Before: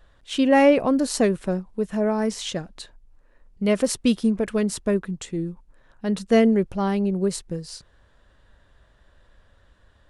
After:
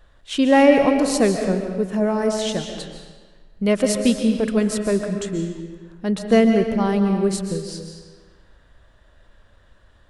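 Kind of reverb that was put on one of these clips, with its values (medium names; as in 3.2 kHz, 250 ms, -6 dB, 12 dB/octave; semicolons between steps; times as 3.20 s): algorithmic reverb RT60 1.4 s, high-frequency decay 0.85×, pre-delay 100 ms, DRR 5 dB; trim +2 dB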